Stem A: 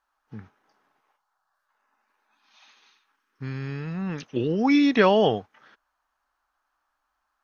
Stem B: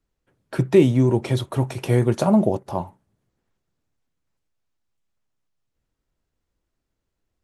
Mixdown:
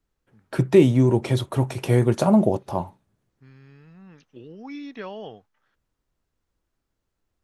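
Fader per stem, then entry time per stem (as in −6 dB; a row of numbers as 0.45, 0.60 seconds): −17.5, 0.0 decibels; 0.00, 0.00 seconds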